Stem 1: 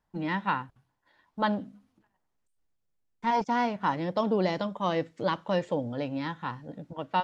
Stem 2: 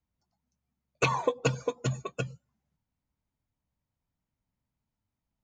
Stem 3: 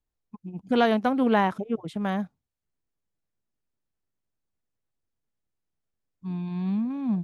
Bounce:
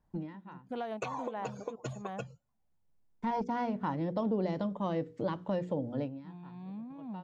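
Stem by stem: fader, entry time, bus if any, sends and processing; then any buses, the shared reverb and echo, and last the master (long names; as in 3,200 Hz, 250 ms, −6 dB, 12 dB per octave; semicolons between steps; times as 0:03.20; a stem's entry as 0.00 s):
+0.5 dB, 0.00 s, no bus, no send, tilt shelving filter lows +7 dB, about 710 Hz; mains-hum notches 60/120/180/240/300/360/420/480 Hz; automatic ducking −22 dB, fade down 0.20 s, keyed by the third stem
−8.0 dB, 0.00 s, bus A, no send, no processing
−17.0 dB, 0.00 s, bus A, no send, no processing
bus A: 0.0 dB, parametric band 730 Hz +8.5 dB 1.2 octaves; downward compressor, threshold −31 dBFS, peak gain reduction 8 dB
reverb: not used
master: downward compressor 2 to 1, threshold −35 dBFS, peak gain reduction 9.5 dB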